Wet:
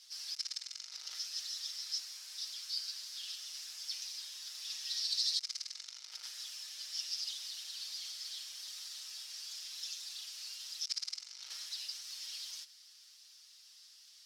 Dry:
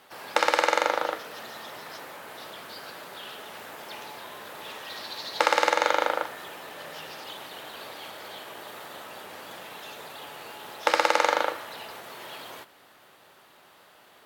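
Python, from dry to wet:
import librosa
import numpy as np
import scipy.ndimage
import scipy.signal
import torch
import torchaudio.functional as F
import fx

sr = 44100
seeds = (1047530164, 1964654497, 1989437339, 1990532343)

y = fx.tracing_dist(x, sr, depth_ms=0.17)
y = y + 0.96 * np.pad(y, (int(6.4 * sr / 1000.0), 0))[:len(y)]
y = fx.over_compress(y, sr, threshold_db=-28.0, ratio=-0.5)
y = fx.ladder_bandpass(y, sr, hz=5700.0, resonance_pct=70)
y = y * 10.0 ** (6.5 / 20.0)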